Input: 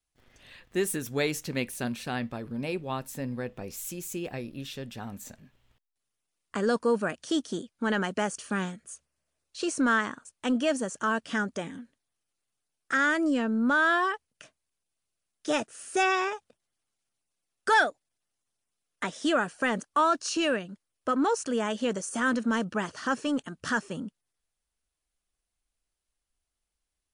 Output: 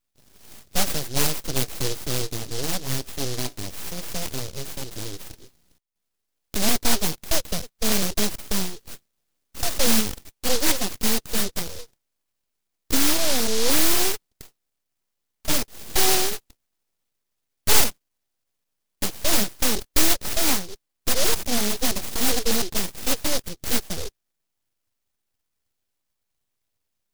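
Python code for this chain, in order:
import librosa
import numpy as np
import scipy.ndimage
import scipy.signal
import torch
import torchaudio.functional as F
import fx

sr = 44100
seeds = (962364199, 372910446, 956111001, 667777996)

y = scipy.signal.sosfilt(scipy.signal.butter(2, 41.0, 'highpass', fs=sr, output='sos'), x)
y = np.abs(y)
y = fx.noise_mod_delay(y, sr, seeds[0], noise_hz=4700.0, depth_ms=0.28)
y = F.gain(torch.from_numpy(y), 8.5).numpy()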